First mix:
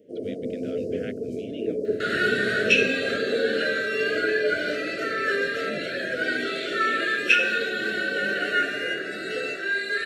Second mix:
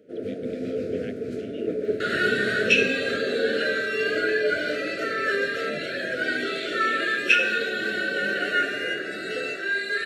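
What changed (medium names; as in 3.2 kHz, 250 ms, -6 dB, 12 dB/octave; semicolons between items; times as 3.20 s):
speech -3.0 dB; first sound: remove inverse Chebyshev band-stop 1.4–3 kHz, stop band 50 dB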